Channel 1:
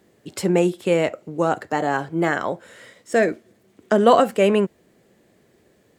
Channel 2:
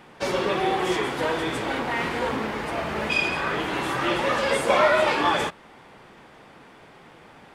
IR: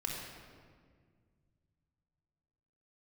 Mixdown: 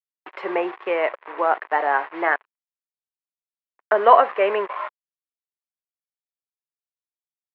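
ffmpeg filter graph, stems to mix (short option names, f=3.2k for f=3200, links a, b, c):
-filter_complex "[0:a]volume=2dB,asplit=3[a][b][c];[a]atrim=end=2.36,asetpts=PTS-STARTPTS,afade=t=out:st=2.356:d=0.004:c=hsin[d];[b]atrim=start=2.36:end=3.42,asetpts=PTS-STARTPTS,volume=0[e];[c]atrim=start=3.42,asetpts=PTS-STARTPTS,afade=t=in:d=0.004:c=hsin[f];[d][e][f]concat=n=3:v=0:a=1,asplit=2[g][h];[1:a]equalizer=f=1.1k:w=4.7:g=10.5,volume=-16.5dB[i];[h]apad=whole_len=332815[j];[i][j]sidechaingate=range=-33dB:threshold=-46dB:ratio=16:detection=peak[k];[g][k]amix=inputs=2:normalize=0,acrusher=bits=4:mix=0:aa=0.5,highpass=f=460:w=0.5412,highpass=f=460:w=1.3066,equalizer=f=510:t=q:w=4:g=-5,equalizer=f=1k:t=q:w=4:g=5,equalizer=f=1.9k:t=q:w=4:g=3,lowpass=f=2.4k:w=0.5412,lowpass=f=2.4k:w=1.3066"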